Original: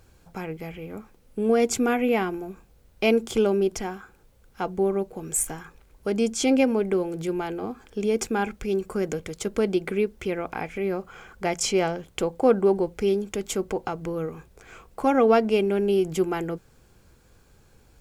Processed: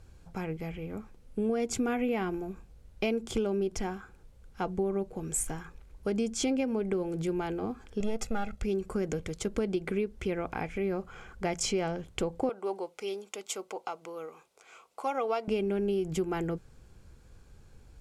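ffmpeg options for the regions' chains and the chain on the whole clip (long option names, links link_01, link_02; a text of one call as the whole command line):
ffmpeg -i in.wav -filter_complex "[0:a]asettb=1/sr,asplit=3[link_01][link_02][link_03];[link_01]atrim=end=8.004[link_04];[link_02]atrim=start=8:end=8.62,asetpts=PTS-STARTPTS,afade=type=in:duration=0.004:curve=qsin,afade=type=out:start_time=0.616:duration=0.004:curve=qsin,aeval=exprs='if(lt(val(0),0),0.447*val(0),val(0))':channel_layout=same,aecho=1:1:1.5:0.74,atrim=end_sample=27342[link_05];[link_03]atrim=start=8.616[link_06];[link_04][link_05]acrossfade=duration=0.004:curve1=hsin:curve2=qsin[link_07];[link_07][link_06]acrossfade=duration=0.004:curve1=qsin:curve2=hsin,asettb=1/sr,asplit=3[link_08][link_09][link_10];[link_08]atrim=end=12.494[link_11];[link_09]atrim=start=12.49:end=15.48,asetpts=PTS-STARTPTS,afade=type=in:duration=0.004:curve=qsin,afade=type=out:start_time=2.986:duration=0.004:curve=qsin,highpass=680,equalizer=frequency=1700:width=6.1:gain=-13.5[link_12];[link_10]atrim=start=15.476[link_13];[link_11][link_12]acrossfade=duration=0.004:curve1=hsin:curve2=qsin[link_14];[link_14][link_13]acrossfade=duration=0.004:curve1=qsin:curve2=hsin,lowpass=11000,lowshelf=frequency=150:gain=9,acompressor=threshold=-22dB:ratio=6,volume=-4dB" out.wav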